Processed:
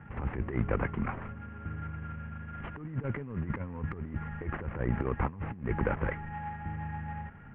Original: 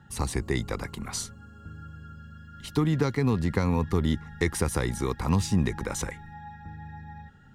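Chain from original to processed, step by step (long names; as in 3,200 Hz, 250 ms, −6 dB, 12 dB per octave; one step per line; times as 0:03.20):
variable-slope delta modulation 16 kbit/s
low-pass filter 2,100 Hz 24 dB per octave
compressor whose output falls as the input rises −31 dBFS, ratio −0.5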